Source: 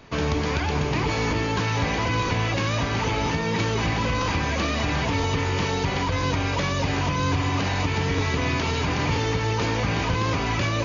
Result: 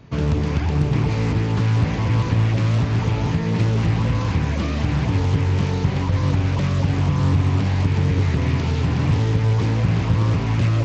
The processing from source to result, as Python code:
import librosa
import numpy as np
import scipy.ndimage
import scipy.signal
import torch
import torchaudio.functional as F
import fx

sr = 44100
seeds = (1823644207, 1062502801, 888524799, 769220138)

y = fx.peak_eq(x, sr, hz=120.0, db=15.0, octaves=2.4)
y = fx.doppler_dist(y, sr, depth_ms=0.52)
y = F.gain(torch.from_numpy(y), -5.5).numpy()